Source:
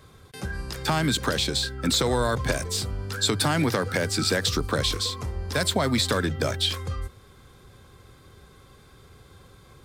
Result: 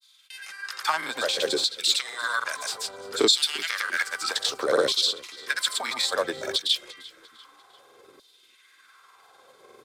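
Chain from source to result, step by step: granulator, pitch spread up and down by 0 st; LFO high-pass saw down 0.61 Hz 350–4200 Hz; frequency-shifting echo 346 ms, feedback 44%, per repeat -32 Hz, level -21 dB

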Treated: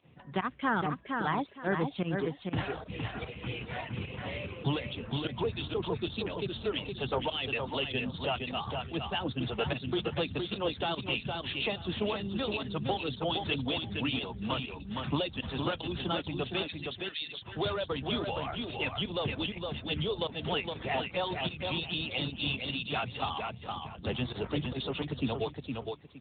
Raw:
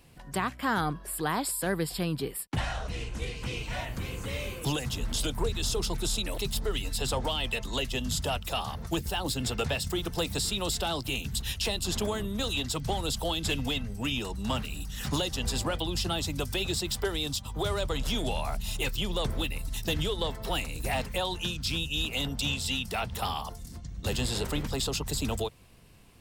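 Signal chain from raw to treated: 20.71–21.20 s: one-bit delta coder 32 kbps, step -33 dBFS; reverb removal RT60 0.62 s; 10.87–11.73 s: treble shelf 2.2 kHz +3.5 dB; 16.63–17.42 s: inverse Chebyshev high-pass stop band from 480 Hz, stop band 60 dB; volume shaper 148 bpm, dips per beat 1, -20 dB, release 75 ms; feedback delay 464 ms, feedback 23%, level -4.5 dB; AMR-NB 10.2 kbps 8 kHz

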